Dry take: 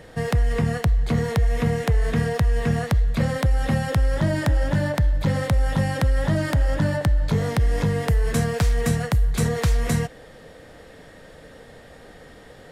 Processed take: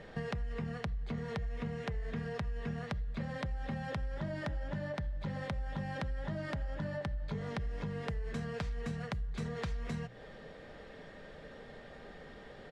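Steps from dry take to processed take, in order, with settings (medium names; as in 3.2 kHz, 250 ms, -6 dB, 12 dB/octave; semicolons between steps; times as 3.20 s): low-pass 4.3 kHz 12 dB/octave; hum notches 60/120/180 Hz; comb 5 ms, depth 33%; compression, threshold -30 dBFS, peak gain reduction 14.5 dB; trim -5.5 dB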